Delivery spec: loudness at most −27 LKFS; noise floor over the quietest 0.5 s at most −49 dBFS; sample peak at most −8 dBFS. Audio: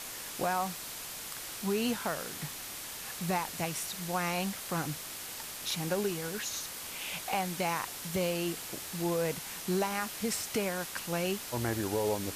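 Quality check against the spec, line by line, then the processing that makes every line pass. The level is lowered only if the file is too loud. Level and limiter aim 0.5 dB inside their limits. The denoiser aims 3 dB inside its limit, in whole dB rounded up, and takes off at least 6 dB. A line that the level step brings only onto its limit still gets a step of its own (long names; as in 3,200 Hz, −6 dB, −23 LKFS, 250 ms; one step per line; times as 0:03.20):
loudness −34.0 LKFS: in spec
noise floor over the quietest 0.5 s −42 dBFS: out of spec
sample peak −19.0 dBFS: in spec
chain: broadband denoise 10 dB, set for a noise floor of −42 dBFS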